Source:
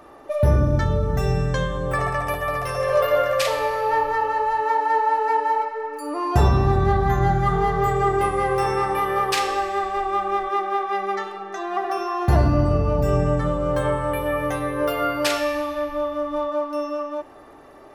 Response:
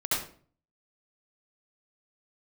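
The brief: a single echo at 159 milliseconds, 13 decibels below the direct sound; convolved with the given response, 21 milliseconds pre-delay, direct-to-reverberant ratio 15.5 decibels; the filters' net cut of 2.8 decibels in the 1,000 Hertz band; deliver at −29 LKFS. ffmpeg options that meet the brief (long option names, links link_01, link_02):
-filter_complex "[0:a]equalizer=frequency=1000:width_type=o:gain=-3.5,aecho=1:1:159:0.224,asplit=2[link_01][link_02];[1:a]atrim=start_sample=2205,adelay=21[link_03];[link_02][link_03]afir=irnorm=-1:irlink=0,volume=-24.5dB[link_04];[link_01][link_04]amix=inputs=2:normalize=0,volume=-6dB"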